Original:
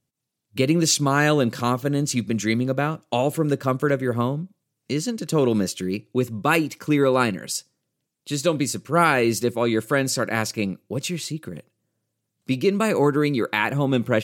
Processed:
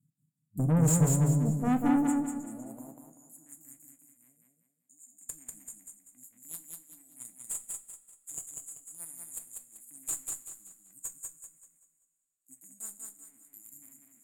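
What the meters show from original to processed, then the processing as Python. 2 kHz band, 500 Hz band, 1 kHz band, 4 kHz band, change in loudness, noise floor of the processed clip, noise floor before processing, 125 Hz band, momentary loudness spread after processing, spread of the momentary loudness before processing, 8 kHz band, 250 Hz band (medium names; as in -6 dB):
-25.5 dB, -21.5 dB, -16.5 dB, -30.0 dB, -8.5 dB, -80 dBFS, -80 dBFS, -6.0 dB, 24 LU, 10 LU, -6.0 dB, -10.0 dB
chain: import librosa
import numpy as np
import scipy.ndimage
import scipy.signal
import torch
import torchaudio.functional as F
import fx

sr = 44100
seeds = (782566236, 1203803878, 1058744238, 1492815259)

y = fx.brickwall_bandstop(x, sr, low_hz=310.0, high_hz=6700.0)
y = fx.transient(y, sr, attack_db=2, sustain_db=-7)
y = y * (1.0 - 0.77 / 2.0 + 0.77 / 2.0 * np.cos(2.0 * np.pi * 1.1 * (np.arange(len(y)) / sr)))
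y = fx.filter_sweep_highpass(y, sr, from_hz=150.0, to_hz=2100.0, start_s=1.29, end_s=3.59, q=4.4)
y = fx.tube_stage(y, sr, drive_db=24.0, bias=0.4)
y = fx.echo_feedback(y, sr, ms=193, feedback_pct=36, wet_db=-3)
y = fx.rev_double_slope(y, sr, seeds[0], early_s=0.23, late_s=2.2, knee_db=-21, drr_db=7.0)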